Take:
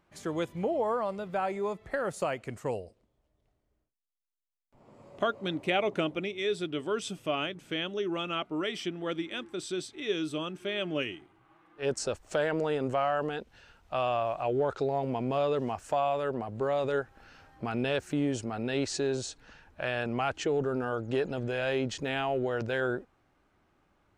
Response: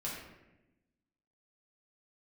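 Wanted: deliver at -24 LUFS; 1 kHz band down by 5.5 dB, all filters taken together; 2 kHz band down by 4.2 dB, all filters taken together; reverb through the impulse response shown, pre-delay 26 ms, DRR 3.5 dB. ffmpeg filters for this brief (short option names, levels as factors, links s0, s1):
-filter_complex "[0:a]equalizer=f=1000:t=o:g=-8,equalizer=f=2000:t=o:g=-3,asplit=2[s0][s1];[1:a]atrim=start_sample=2205,adelay=26[s2];[s1][s2]afir=irnorm=-1:irlink=0,volume=0.562[s3];[s0][s3]amix=inputs=2:normalize=0,volume=2.51"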